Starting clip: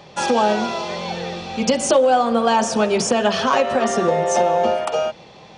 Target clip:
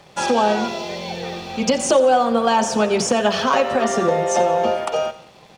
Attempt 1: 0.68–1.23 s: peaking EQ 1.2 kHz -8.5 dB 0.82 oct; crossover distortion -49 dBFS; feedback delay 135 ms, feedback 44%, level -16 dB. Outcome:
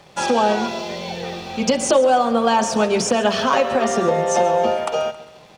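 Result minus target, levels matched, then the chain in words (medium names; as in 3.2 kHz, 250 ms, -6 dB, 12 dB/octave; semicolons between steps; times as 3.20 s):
echo 46 ms late
0.68–1.23 s: peaking EQ 1.2 kHz -8.5 dB 0.82 oct; crossover distortion -49 dBFS; feedback delay 89 ms, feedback 44%, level -16 dB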